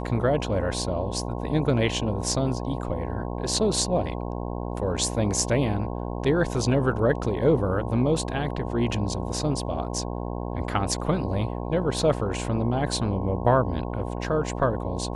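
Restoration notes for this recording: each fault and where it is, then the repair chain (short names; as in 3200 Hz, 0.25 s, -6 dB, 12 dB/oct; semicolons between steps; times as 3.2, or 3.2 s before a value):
buzz 60 Hz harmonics 18 -31 dBFS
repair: de-hum 60 Hz, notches 18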